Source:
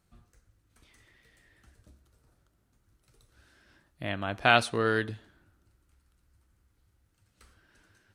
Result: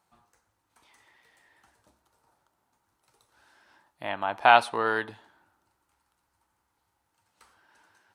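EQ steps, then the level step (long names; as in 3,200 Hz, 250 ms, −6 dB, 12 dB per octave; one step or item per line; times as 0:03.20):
high-pass filter 460 Hz 6 dB per octave
parametric band 890 Hz +15 dB 0.6 octaves
dynamic equaliser 6,700 Hz, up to −7 dB, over −50 dBFS, Q 1.1
0.0 dB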